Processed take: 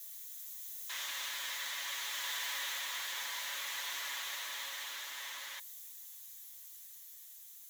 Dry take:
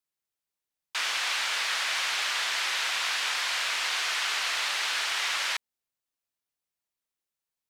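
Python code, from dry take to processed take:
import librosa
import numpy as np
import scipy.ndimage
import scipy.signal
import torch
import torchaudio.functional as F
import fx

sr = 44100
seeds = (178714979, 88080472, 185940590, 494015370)

y = x + 0.5 * 10.0 ** (-26.0 / 20.0) * np.diff(np.sign(x), prepend=np.sign(x[:1]))
y = fx.doppler_pass(y, sr, speed_mps=20, closest_m=11.0, pass_at_s=2.45)
y = y + 0.65 * np.pad(y, (int(7.1 * sr / 1000.0), 0))[:len(y)]
y = fx.rider(y, sr, range_db=4, speed_s=0.5)
y = fx.ripple_eq(y, sr, per_octave=1.1, db=7)
y = y * 10.0 ** (-9.0 / 20.0)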